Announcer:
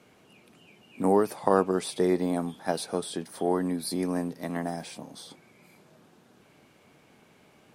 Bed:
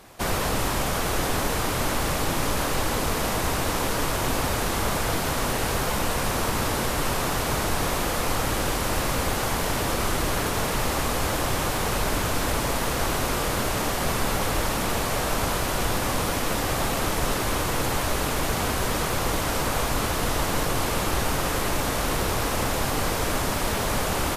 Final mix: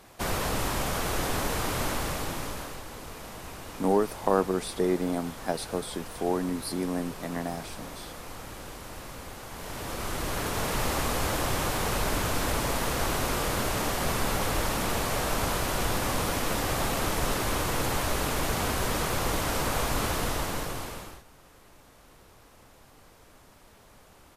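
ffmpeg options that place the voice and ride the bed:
ffmpeg -i stem1.wav -i stem2.wav -filter_complex "[0:a]adelay=2800,volume=-1.5dB[link_01];[1:a]volume=9.5dB,afade=type=out:start_time=1.82:duration=1:silence=0.237137,afade=type=in:start_time=9.49:duration=1.33:silence=0.211349,afade=type=out:start_time=20.12:duration=1.11:silence=0.0446684[link_02];[link_01][link_02]amix=inputs=2:normalize=0" out.wav

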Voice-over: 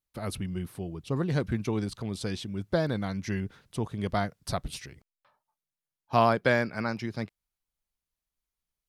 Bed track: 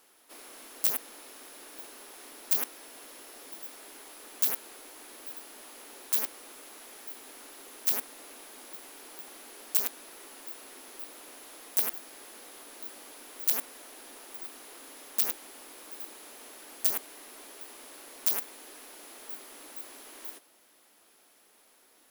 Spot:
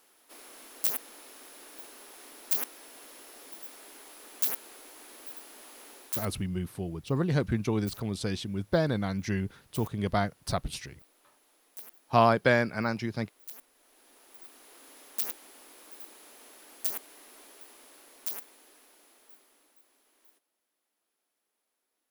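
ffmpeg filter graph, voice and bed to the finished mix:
ffmpeg -i stem1.wav -i stem2.wav -filter_complex "[0:a]adelay=6000,volume=1dB[link_01];[1:a]volume=12dB,afade=type=out:start_time=5.88:duration=0.6:silence=0.149624,afade=type=in:start_time=13.75:duration=1.19:silence=0.211349,afade=type=out:start_time=17.38:duration=2.42:silence=0.158489[link_02];[link_01][link_02]amix=inputs=2:normalize=0" out.wav

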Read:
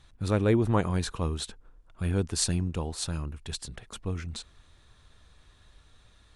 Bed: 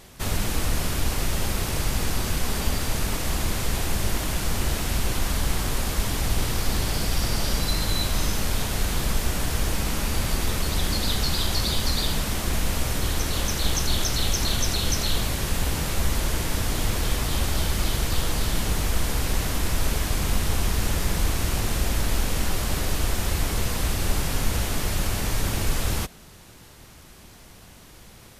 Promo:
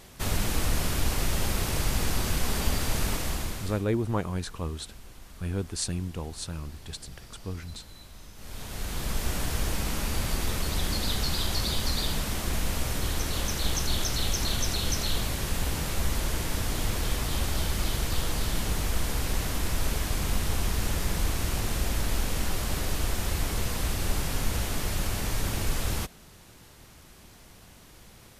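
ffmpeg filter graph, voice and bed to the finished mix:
ffmpeg -i stem1.wav -i stem2.wav -filter_complex "[0:a]adelay=3400,volume=-3.5dB[link_01];[1:a]volume=17.5dB,afade=type=out:start_time=3.09:duration=0.76:silence=0.0841395,afade=type=in:start_time=8.35:duration=0.97:silence=0.105925[link_02];[link_01][link_02]amix=inputs=2:normalize=0" out.wav

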